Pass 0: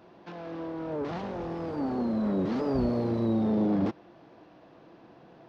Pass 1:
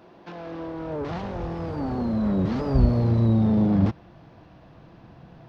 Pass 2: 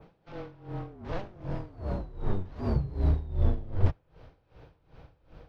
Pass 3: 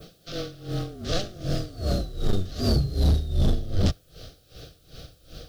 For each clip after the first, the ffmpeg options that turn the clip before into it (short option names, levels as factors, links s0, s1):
-af "asubboost=boost=9:cutoff=120,volume=1.5"
-af "afreqshift=-190,adynamicequalizer=threshold=0.00112:dfrequency=4600:dqfactor=0.89:tfrequency=4600:tqfactor=0.89:attack=5:release=100:ratio=0.375:range=2:mode=cutabove:tftype=bell,aeval=exprs='val(0)*pow(10,-20*(0.5-0.5*cos(2*PI*2.6*n/s))/20)':c=same"
-af "aexciter=amount=9.9:drive=4.5:freq=3300,asuperstop=centerf=930:order=8:qfactor=2.5,aeval=exprs='0.355*sin(PI/2*3.16*val(0)/0.355)':c=same,volume=0.501"